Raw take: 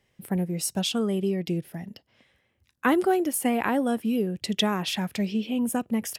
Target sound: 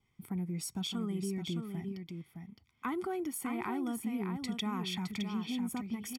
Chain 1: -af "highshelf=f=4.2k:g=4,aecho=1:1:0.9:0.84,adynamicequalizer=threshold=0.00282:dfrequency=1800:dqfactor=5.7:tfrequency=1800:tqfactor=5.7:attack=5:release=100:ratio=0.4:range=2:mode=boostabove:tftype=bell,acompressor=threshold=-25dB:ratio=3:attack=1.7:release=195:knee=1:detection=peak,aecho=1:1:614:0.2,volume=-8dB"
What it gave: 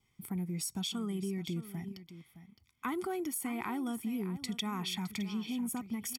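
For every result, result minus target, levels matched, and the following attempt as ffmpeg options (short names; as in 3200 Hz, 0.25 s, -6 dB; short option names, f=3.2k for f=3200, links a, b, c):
echo-to-direct -7.5 dB; 8000 Hz band +3.5 dB
-af "highshelf=f=4.2k:g=4,aecho=1:1:0.9:0.84,adynamicequalizer=threshold=0.00282:dfrequency=1800:dqfactor=5.7:tfrequency=1800:tqfactor=5.7:attack=5:release=100:ratio=0.4:range=2:mode=boostabove:tftype=bell,acompressor=threshold=-25dB:ratio=3:attack=1.7:release=195:knee=1:detection=peak,aecho=1:1:614:0.473,volume=-8dB"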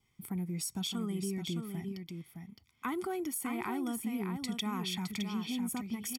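8000 Hz band +3.5 dB
-af "highshelf=f=4.2k:g=-5.5,aecho=1:1:0.9:0.84,adynamicequalizer=threshold=0.00282:dfrequency=1800:dqfactor=5.7:tfrequency=1800:tqfactor=5.7:attack=5:release=100:ratio=0.4:range=2:mode=boostabove:tftype=bell,acompressor=threshold=-25dB:ratio=3:attack=1.7:release=195:knee=1:detection=peak,aecho=1:1:614:0.473,volume=-8dB"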